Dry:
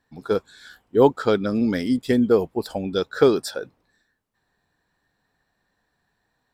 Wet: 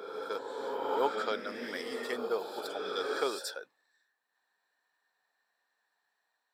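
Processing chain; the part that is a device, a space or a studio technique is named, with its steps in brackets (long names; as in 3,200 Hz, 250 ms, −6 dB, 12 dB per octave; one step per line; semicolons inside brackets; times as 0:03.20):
ghost voice (reversed playback; convolution reverb RT60 2.6 s, pre-delay 59 ms, DRR 1 dB; reversed playback; high-pass filter 720 Hz 12 dB per octave)
level −7.5 dB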